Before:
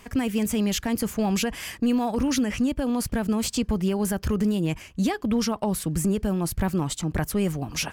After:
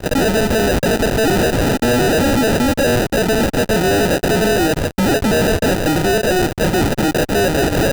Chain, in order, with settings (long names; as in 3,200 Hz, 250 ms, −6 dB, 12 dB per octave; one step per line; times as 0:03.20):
flat-topped band-pass 990 Hz, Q 0.58
fuzz pedal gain 50 dB, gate −59 dBFS
sample-rate reduction 1,100 Hz, jitter 0%